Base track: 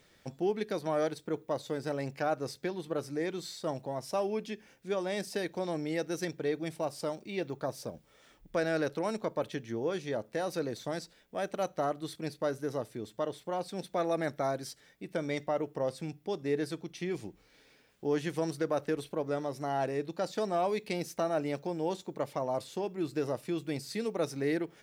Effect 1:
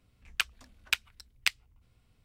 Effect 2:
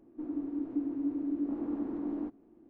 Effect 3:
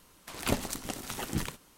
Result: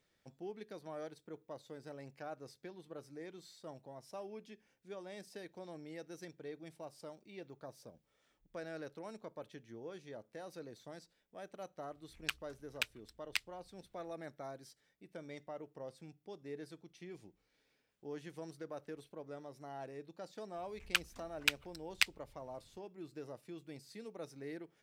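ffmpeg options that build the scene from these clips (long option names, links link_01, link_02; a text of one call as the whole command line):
ffmpeg -i bed.wav -i cue0.wav -filter_complex "[1:a]asplit=2[link_01][link_02];[0:a]volume=-15dB[link_03];[link_01]atrim=end=2.24,asetpts=PTS-STARTPTS,volume=-9dB,afade=type=in:duration=0.004:curve=hsin,afade=type=out:start_time=2.236:duration=0.004:curve=hsin,adelay=11890[link_04];[link_02]atrim=end=2.24,asetpts=PTS-STARTPTS,volume=-3dB,afade=type=in:duration=0.004:curve=hsin,afade=type=out:start_time=2.236:duration=0.004:curve=hsin,adelay=20550[link_05];[link_03][link_04][link_05]amix=inputs=3:normalize=0" out.wav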